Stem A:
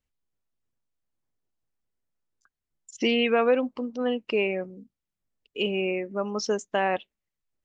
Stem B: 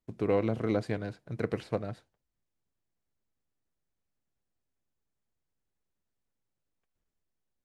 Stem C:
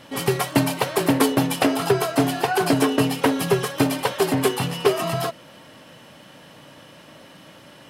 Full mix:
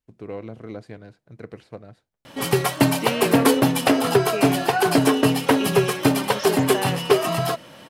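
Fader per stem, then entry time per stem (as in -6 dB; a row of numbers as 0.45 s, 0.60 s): -3.5 dB, -6.5 dB, +1.5 dB; 0.00 s, 0.00 s, 2.25 s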